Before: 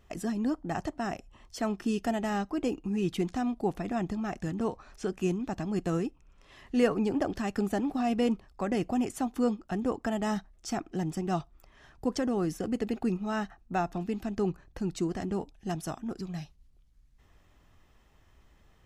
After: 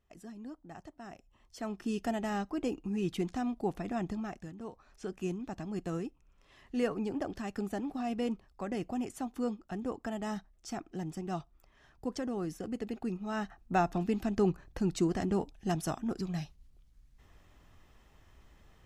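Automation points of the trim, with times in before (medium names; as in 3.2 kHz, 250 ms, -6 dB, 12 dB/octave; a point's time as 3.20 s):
0.96 s -15.5 dB
2.01 s -3.5 dB
4.19 s -3.5 dB
4.56 s -14 dB
5.11 s -6.5 dB
13.15 s -6.5 dB
13.74 s +1.5 dB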